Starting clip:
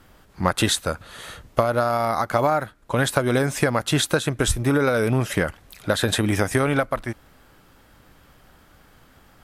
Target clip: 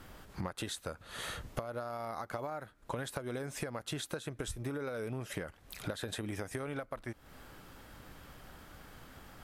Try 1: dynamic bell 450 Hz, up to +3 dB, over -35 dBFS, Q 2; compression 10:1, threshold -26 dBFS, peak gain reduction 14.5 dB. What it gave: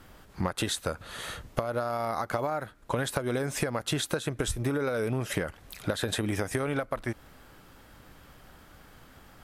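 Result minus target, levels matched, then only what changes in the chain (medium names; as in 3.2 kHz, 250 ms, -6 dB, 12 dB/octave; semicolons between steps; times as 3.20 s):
compression: peak gain reduction -9.5 dB
change: compression 10:1, threshold -36.5 dBFS, peak gain reduction 24 dB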